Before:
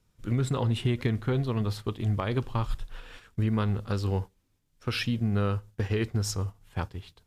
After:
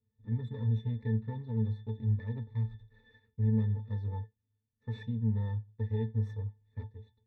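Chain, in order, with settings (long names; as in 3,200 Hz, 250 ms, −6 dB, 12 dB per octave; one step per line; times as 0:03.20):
lower of the sound and its delayed copy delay 0.5 ms
resonances in every octave A, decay 0.16 s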